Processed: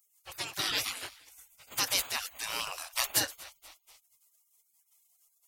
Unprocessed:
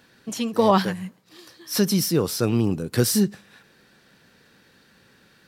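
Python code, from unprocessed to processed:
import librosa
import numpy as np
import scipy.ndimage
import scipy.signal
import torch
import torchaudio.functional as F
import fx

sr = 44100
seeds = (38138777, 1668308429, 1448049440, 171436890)

y = fx.echo_feedback(x, sr, ms=240, feedback_pct=49, wet_db=-22)
y = fx.spec_gate(y, sr, threshold_db=-30, keep='weak')
y = y * 10.0 ** (8.5 / 20.0)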